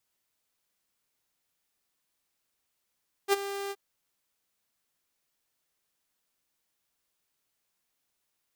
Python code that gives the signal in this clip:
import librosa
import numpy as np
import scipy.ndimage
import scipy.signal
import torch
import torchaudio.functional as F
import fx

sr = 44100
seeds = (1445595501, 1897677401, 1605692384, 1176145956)

y = fx.adsr_tone(sr, wave='saw', hz=398.0, attack_ms=48.0, decay_ms=23.0, sustain_db=-14.0, held_s=0.43, release_ms=43.0, level_db=-16.5)